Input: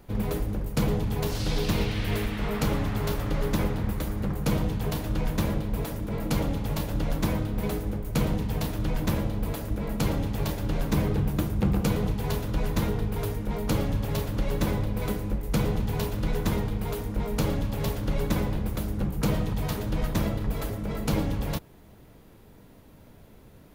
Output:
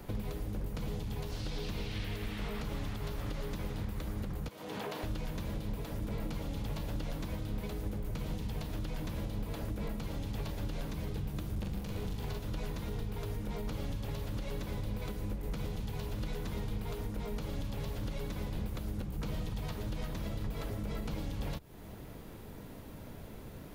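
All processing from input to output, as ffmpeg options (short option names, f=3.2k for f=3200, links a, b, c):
-filter_complex "[0:a]asettb=1/sr,asplit=3[a][b][c];[a]atrim=end=4.484[d];[b]atrim=start=4.48:end=5.03,asetpts=PTS-STARTPTS,afade=t=in:d=0.004:c=qsin,afade=t=out:st=0.546:d=0.004:c=qsin,highpass=390,acompressor=threshold=-37dB:ratio=6:attack=3.2:release=140:knee=1:detection=peak[e];[c]atrim=start=5.026[f];[d][e]acrossfade=d=0.004:c1=hsin:c2=qsin[g];[g][f]acrossfade=d=0.004:c1=qsin:c2=hsin,asettb=1/sr,asplit=3[h][i][j];[h]atrim=end=11.554[k];[i]atrim=start=11.55:end=12.39,asetpts=PTS-STARTPTS,afade=t=in:d=0.004:c=qsin,afade=t=out:st=0.836:d=0.004:c=qsin,aeval=exprs='clip(val(0),-1,0.0501)':c=same,asplit=2[l][m];[m]adelay=41,volume=-2.5dB[n];[l][n]amix=inputs=2:normalize=0,atrim=end_sample=37044[o];[j]atrim=start=12.386[p];[k][o]acrossfade=d=0.004:c1=hsin:c2=qsin[q];[q][p]acrossfade=d=0.004:c1=qsin:c2=hsin,acrossover=split=86|3000[r][s][t];[r]acompressor=threshold=-35dB:ratio=4[u];[s]acompressor=threshold=-38dB:ratio=4[v];[t]acompressor=threshold=-43dB:ratio=4[w];[u][v][w]amix=inputs=3:normalize=0,alimiter=level_in=8.5dB:limit=-24dB:level=0:latency=1:release=318,volume=-8.5dB,acrossover=split=4700[x][y];[y]acompressor=threshold=-59dB:ratio=4:attack=1:release=60[z];[x][z]amix=inputs=2:normalize=0,volume=4.5dB"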